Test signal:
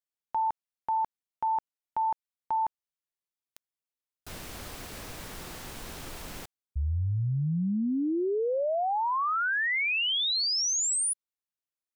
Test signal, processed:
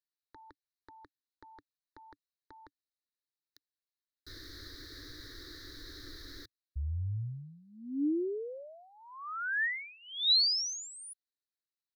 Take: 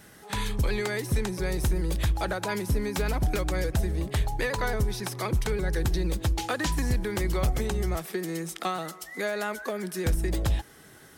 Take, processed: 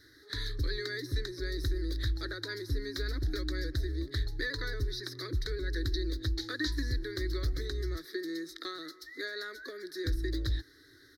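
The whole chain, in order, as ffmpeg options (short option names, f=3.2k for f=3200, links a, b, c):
-af "firequalizer=gain_entry='entry(110,0);entry(190,-27);entry(290,6);entry(790,-27);entry(1200,-7);entry(1800,5);entry(2700,-26);entry(3900,11);entry(7800,-15);entry(12000,-8)':delay=0.05:min_phase=1,volume=-6dB"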